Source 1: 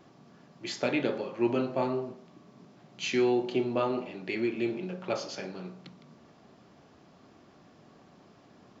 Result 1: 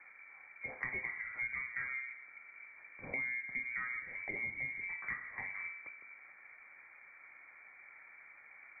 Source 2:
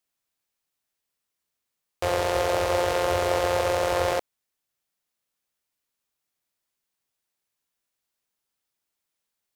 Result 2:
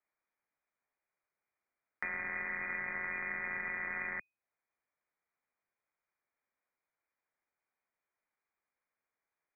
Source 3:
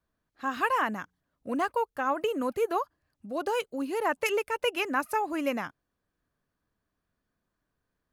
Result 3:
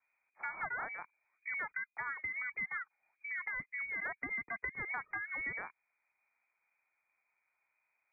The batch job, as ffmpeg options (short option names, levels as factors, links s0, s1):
-filter_complex "[0:a]lowpass=f=2100:t=q:w=0.5098,lowpass=f=2100:t=q:w=0.6013,lowpass=f=2100:t=q:w=0.9,lowpass=f=2100:t=q:w=2.563,afreqshift=-2500,acrossover=split=110|310[s0][s1][s2];[s0]acompressor=threshold=0.001:ratio=4[s3];[s1]acompressor=threshold=0.00251:ratio=4[s4];[s2]acompressor=threshold=0.0112:ratio=4[s5];[s3][s4][s5]amix=inputs=3:normalize=0"